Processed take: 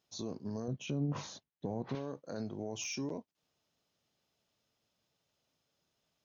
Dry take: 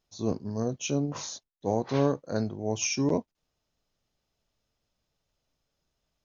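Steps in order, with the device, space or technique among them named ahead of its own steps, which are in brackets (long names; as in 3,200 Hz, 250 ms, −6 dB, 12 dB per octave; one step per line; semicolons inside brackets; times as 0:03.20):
broadcast voice chain (high-pass filter 120 Hz 12 dB per octave; de-essing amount 65%; downward compressor 3 to 1, threshold −35 dBFS, peak gain reduction 12 dB; parametric band 3,200 Hz +2.5 dB 0.73 octaves; brickwall limiter −30.5 dBFS, peak gain reduction 7 dB)
0:00.68–0:01.95: bass and treble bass +10 dB, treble −12 dB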